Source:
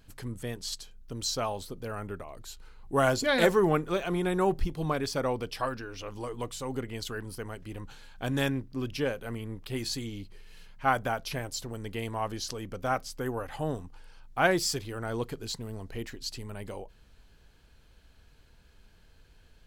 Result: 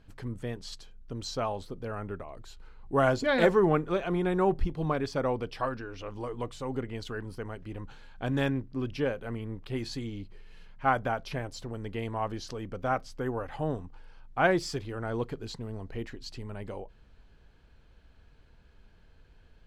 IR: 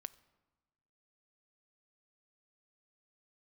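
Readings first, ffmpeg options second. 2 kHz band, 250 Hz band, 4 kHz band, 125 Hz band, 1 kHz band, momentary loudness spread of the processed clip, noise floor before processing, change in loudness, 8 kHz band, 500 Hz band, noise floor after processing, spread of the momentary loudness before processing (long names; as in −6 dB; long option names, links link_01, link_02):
−1.5 dB, +1.0 dB, −6.0 dB, +1.0 dB, 0.0 dB, 16 LU, −58 dBFS, 0.0 dB, −10.5 dB, +0.5 dB, −58 dBFS, 15 LU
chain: -af "aemphasis=mode=reproduction:type=75fm"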